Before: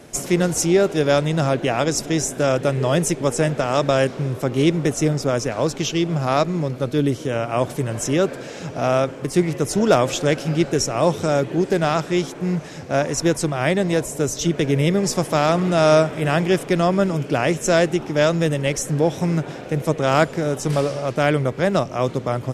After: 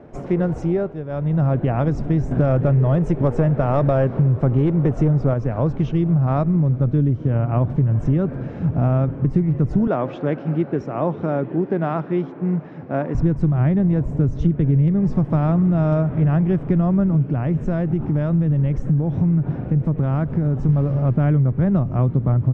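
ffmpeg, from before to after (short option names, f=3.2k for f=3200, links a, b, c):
-filter_complex "[0:a]asettb=1/sr,asplit=3[a][b][c];[a]atrim=end=2.314[d];[b]atrim=start=2.31:end=5.34,asetpts=PTS-STARTPTS,afade=t=in:d=0.004:c=qsin,afade=t=out:st=3.026:d=0.004:c=qsin,acontrast=89[e];[c]atrim=start=5.336[f];[d][e]acrossfade=d=0.004:c1=hsin:c2=qsin[g];[g][f]acrossfade=d=0.004:c1=qsin:c2=hsin,asettb=1/sr,asplit=3[h][i][j];[h]atrim=end=9.874[k];[i]atrim=start=9.87:end=13.15,asetpts=PTS-STARTPTS,afade=t=in:d=0.004:c=qsin,afade=t=out:st=3.276:d=0.004:c=qsin,highpass=320,lowpass=4.5k[l];[j]atrim=start=13.146[m];[k][l]acrossfade=d=0.004:c1=hsin:c2=qsin[n];[n][m]acrossfade=d=0.004:c1=qsin:c2=hsin,asettb=1/sr,asplit=3[o][p][q];[o]atrim=end=17.274[r];[p]atrim=start=17.27:end=20.69,asetpts=PTS-STARTPTS,afade=t=in:d=0.004:c=qsin,afade=t=out:st=3.416:d=0.004:c=qsin,acompressor=threshold=-26dB:ratio=2:attack=3.2:release=140:knee=1:detection=peak[s];[q]atrim=start=20.686[t];[r][s]acrossfade=d=0.004:c1=hsin:c2=qsin[u];[u][t]acrossfade=d=0.004:c1=qsin:c2=hsin,asplit=3[v][w][x];[v]atrim=end=1.02,asetpts=PTS-STARTPTS,afade=t=out:st=0.54:d=0.48:silence=0.211349[y];[w]atrim=start=1.02:end=1.09,asetpts=PTS-STARTPTS,volume=-13.5dB[z];[x]atrim=start=1.09,asetpts=PTS-STARTPTS,afade=t=in:d=0.48:silence=0.211349[aa];[y][z][aa]concat=n=3:v=0:a=1,lowpass=1.1k,asubboost=boost=8.5:cutoff=170,acompressor=threshold=-16dB:ratio=6,volume=1.5dB"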